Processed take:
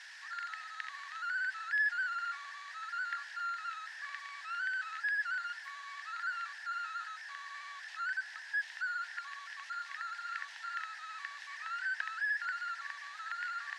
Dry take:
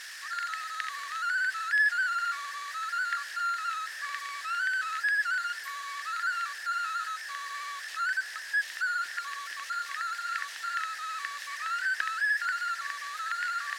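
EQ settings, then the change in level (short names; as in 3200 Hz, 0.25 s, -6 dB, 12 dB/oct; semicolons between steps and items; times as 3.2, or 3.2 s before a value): ladder high-pass 750 Hz, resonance 50%; air absorption 84 m; bell 1200 Hz -12 dB 0.23 oct; +2.5 dB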